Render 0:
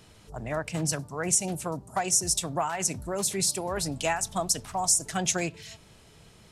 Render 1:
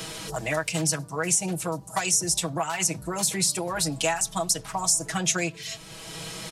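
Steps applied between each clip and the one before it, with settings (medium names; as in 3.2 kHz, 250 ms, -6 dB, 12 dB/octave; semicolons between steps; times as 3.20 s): bass shelf 410 Hz -4.5 dB; comb 6.2 ms, depth 100%; three bands compressed up and down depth 70%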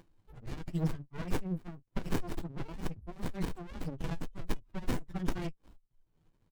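expander on every frequency bin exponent 3; doubling 12 ms -5.5 dB; sliding maximum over 65 samples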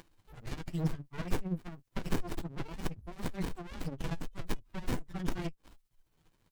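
tremolo 15 Hz, depth 44%; tape noise reduction on one side only encoder only; trim +1.5 dB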